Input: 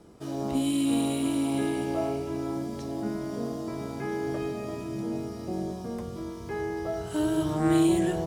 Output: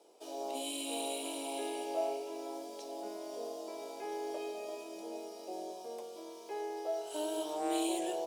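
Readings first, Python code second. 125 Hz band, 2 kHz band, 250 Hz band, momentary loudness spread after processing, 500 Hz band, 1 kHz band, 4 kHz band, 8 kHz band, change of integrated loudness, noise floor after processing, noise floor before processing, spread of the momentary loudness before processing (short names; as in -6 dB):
under -35 dB, -9.5 dB, -15.5 dB, 10 LU, -6.0 dB, -3.5 dB, -2.5 dB, -2.5 dB, -10.0 dB, -49 dBFS, -38 dBFS, 10 LU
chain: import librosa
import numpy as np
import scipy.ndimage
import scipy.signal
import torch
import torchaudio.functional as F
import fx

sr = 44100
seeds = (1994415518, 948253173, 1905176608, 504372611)

y = scipy.signal.sosfilt(scipy.signal.butter(4, 450.0, 'highpass', fs=sr, output='sos'), x)
y = fx.band_shelf(y, sr, hz=1500.0, db=-11.5, octaves=1.1)
y = F.gain(torch.from_numpy(y), -2.5).numpy()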